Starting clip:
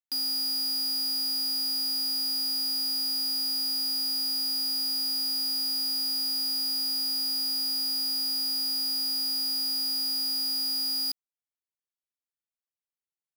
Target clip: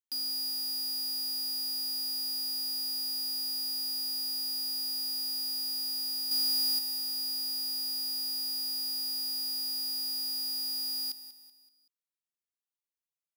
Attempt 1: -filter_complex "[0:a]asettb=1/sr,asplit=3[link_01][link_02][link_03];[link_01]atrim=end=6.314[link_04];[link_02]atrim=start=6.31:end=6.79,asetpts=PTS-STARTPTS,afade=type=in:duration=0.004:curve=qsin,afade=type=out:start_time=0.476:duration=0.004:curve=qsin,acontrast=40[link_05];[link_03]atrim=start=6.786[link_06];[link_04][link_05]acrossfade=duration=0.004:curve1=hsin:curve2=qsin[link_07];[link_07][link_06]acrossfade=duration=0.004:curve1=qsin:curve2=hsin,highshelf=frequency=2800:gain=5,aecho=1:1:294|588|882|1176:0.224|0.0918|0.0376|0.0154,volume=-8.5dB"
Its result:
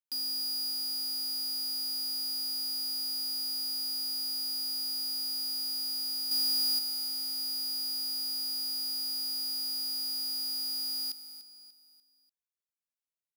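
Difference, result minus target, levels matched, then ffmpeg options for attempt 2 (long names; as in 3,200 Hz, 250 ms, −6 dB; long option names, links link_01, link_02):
echo 104 ms late
-filter_complex "[0:a]asettb=1/sr,asplit=3[link_01][link_02][link_03];[link_01]atrim=end=6.314[link_04];[link_02]atrim=start=6.31:end=6.79,asetpts=PTS-STARTPTS,afade=type=in:duration=0.004:curve=qsin,afade=type=out:start_time=0.476:duration=0.004:curve=qsin,acontrast=40[link_05];[link_03]atrim=start=6.786[link_06];[link_04][link_05]acrossfade=duration=0.004:curve1=hsin:curve2=qsin[link_07];[link_07][link_06]acrossfade=duration=0.004:curve1=qsin:curve2=hsin,highshelf=frequency=2800:gain=5,aecho=1:1:190|380|570|760:0.224|0.0918|0.0376|0.0154,volume=-8.5dB"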